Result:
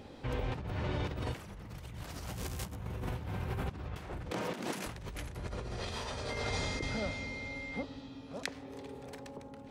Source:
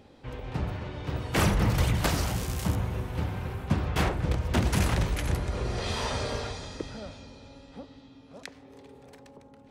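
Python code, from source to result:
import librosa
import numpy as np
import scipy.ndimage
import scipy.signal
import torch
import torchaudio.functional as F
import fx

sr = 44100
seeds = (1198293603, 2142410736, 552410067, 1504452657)

y = fx.highpass(x, sr, hz=200.0, slope=24, at=(4.29, 4.86), fade=0.02)
y = fx.over_compress(y, sr, threshold_db=-37.0, ratio=-1.0)
y = fx.dmg_tone(y, sr, hz=2100.0, level_db=-39.0, at=(6.29, 7.81), fade=0.02)
y = y * librosa.db_to_amplitude(-2.5)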